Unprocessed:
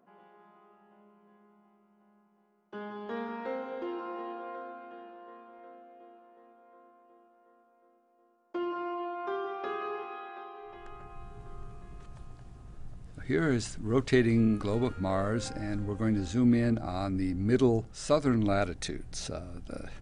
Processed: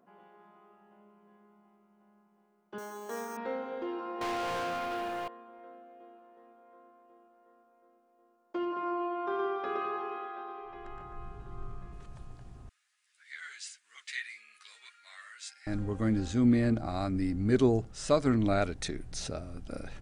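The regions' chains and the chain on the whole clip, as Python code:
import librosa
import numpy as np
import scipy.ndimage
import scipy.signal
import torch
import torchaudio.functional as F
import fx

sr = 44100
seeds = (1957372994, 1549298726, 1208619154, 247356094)

y = fx.chain(x, sr, fx.highpass(hz=330.0, slope=12),
    fx.resample_bad(factor=6, down='filtered', up='hold'), at=(2.78, 3.37))
y = fx.chain(y, sr, fx.tilt_eq(slope=2.0),
    fx.leveller(passes=5), at=(4.21, 5.28))
y = fx.chain(y, sr, fx.lowpass(hz=4000.0, slope=6),
    fx.echo_single(ms=117, db=-4.0), at=(8.65, 11.93))
y = fx.chain(y, sr, fx.cheby1_highpass(hz=1900.0, order=3),
    fx.ensemble(), at=(12.69, 15.67))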